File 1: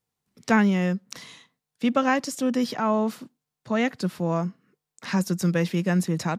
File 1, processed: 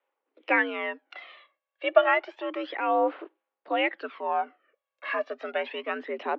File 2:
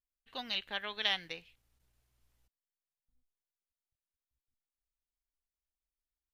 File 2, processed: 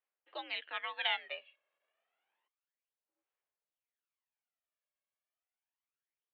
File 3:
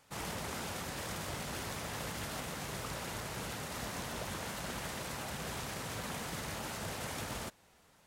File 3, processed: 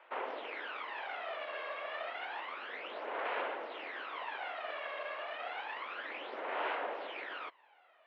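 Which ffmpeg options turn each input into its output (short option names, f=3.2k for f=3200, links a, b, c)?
-af "aphaser=in_gain=1:out_gain=1:delay=1.9:decay=0.65:speed=0.3:type=sinusoidal,highpass=f=350:t=q:w=0.5412,highpass=f=350:t=q:w=1.307,lowpass=f=3k:t=q:w=0.5176,lowpass=f=3k:t=q:w=0.7071,lowpass=f=3k:t=q:w=1.932,afreqshift=73"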